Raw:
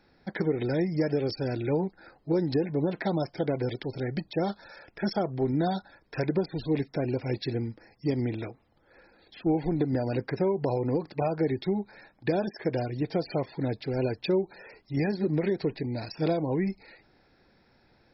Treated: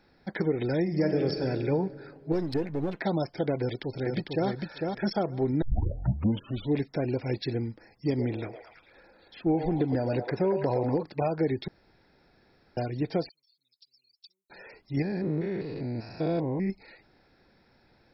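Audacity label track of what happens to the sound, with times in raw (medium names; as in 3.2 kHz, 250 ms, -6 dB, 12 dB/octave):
0.810000	1.440000	reverb throw, RT60 2.4 s, DRR 4.5 dB
2.320000	3.000000	partial rectifier negative side -7 dB
3.590000	4.490000	echo throw 450 ms, feedback 15%, level -3.5 dB
5.620000	5.620000	tape start 1.16 s
8.070000	11.030000	repeats whose band climbs or falls 111 ms, band-pass from 620 Hz, each repeat 0.7 oct, level -3 dB
11.680000	12.770000	room tone
13.290000	14.500000	inverse Chebyshev high-pass stop band from 1.8 kHz, stop band 60 dB
15.020000	16.700000	spectrogram pixelated in time every 200 ms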